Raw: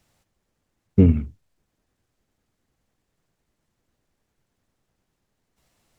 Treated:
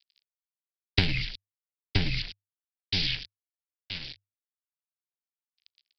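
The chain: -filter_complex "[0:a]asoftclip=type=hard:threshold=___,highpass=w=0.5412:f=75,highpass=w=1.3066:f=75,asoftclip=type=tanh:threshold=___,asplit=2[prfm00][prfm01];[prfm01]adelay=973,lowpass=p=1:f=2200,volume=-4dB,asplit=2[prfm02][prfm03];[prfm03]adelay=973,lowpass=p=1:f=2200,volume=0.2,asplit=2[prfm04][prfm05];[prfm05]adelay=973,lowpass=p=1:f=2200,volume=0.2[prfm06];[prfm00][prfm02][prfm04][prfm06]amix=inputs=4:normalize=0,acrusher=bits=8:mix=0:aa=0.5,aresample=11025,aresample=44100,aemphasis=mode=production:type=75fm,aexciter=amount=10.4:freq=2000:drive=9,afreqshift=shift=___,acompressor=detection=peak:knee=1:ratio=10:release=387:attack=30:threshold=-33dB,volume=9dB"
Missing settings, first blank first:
-13.5dB, -16dB, -100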